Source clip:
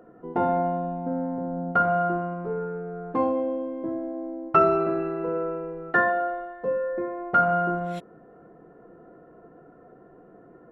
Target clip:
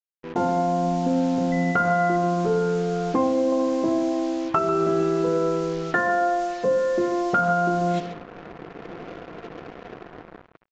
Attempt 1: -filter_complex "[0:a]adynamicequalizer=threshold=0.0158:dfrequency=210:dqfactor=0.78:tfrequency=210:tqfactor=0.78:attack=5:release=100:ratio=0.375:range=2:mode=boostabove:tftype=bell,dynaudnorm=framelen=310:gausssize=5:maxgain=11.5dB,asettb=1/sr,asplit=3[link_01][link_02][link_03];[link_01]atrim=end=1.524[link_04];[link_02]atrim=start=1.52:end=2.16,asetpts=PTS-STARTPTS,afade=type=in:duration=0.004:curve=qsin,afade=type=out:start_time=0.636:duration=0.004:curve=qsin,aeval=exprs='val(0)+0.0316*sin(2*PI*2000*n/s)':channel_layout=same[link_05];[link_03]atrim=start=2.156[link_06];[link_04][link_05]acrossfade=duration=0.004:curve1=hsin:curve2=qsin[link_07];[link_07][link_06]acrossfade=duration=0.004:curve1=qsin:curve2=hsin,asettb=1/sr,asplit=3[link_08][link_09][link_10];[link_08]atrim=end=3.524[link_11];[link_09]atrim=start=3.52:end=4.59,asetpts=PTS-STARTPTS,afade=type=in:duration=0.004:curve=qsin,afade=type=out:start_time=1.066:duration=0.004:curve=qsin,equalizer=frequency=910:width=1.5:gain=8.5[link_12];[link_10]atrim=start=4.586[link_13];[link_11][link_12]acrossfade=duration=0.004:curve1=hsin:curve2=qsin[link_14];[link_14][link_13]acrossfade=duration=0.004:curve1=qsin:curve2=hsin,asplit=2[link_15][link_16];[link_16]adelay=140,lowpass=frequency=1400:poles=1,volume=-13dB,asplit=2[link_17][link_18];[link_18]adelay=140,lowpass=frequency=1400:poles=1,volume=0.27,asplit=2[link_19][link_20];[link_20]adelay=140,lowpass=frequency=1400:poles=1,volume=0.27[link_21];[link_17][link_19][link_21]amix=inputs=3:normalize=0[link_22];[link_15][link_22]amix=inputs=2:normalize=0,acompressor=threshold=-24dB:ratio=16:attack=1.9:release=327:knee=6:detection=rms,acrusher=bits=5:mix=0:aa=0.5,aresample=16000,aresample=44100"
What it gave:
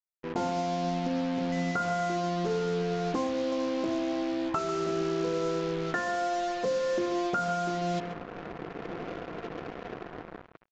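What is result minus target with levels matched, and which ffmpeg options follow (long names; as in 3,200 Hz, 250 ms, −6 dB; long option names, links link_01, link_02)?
downward compressor: peak gain reduction +9 dB
-filter_complex "[0:a]adynamicequalizer=threshold=0.0158:dfrequency=210:dqfactor=0.78:tfrequency=210:tqfactor=0.78:attack=5:release=100:ratio=0.375:range=2:mode=boostabove:tftype=bell,dynaudnorm=framelen=310:gausssize=5:maxgain=11.5dB,asettb=1/sr,asplit=3[link_01][link_02][link_03];[link_01]atrim=end=1.524[link_04];[link_02]atrim=start=1.52:end=2.16,asetpts=PTS-STARTPTS,afade=type=in:duration=0.004:curve=qsin,afade=type=out:start_time=0.636:duration=0.004:curve=qsin,aeval=exprs='val(0)+0.0316*sin(2*PI*2000*n/s)':channel_layout=same[link_05];[link_03]atrim=start=2.156[link_06];[link_04][link_05]acrossfade=duration=0.004:curve1=hsin:curve2=qsin[link_07];[link_07][link_06]acrossfade=duration=0.004:curve1=qsin:curve2=hsin,asettb=1/sr,asplit=3[link_08][link_09][link_10];[link_08]atrim=end=3.524[link_11];[link_09]atrim=start=3.52:end=4.59,asetpts=PTS-STARTPTS,afade=type=in:duration=0.004:curve=qsin,afade=type=out:start_time=1.066:duration=0.004:curve=qsin,equalizer=frequency=910:width=1.5:gain=8.5[link_12];[link_10]atrim=start=4.586[link_13];[link_11][link_12]acrossfade=duration=0.004:curve1=hsin:curve2=qsin[link_14];[link_14][link_13]acrossfade=duration=0.004:curve1=qsin:curve2=hsin,asplit=2[link_15][link_16];[link_16]adelay=140,lowpass=frequency=1400:poles=1,volume=-13dB,asplit=2[link_17][link_18];[link_18]adelay=140,lowpass=frequency=1400:poles=1,volume=0.27,asplit=2[link_19][link_20];[link_20]adelay=140,lowpass=frequency=1400:poles=1,volume=0.27[link_21];[link_17][link_19][link_21]amix=inputs=3:normalize=0[link_22];[link_15][link_22]amix=inputs=2:normalize=0,acompressor=threshold=-14.5dB:ratio=16:attack=1.9:release=327:knee=6:detection=rms,acrusher=bits=5:mix=0:aa=0.5,aresample=16000,aresample=44100"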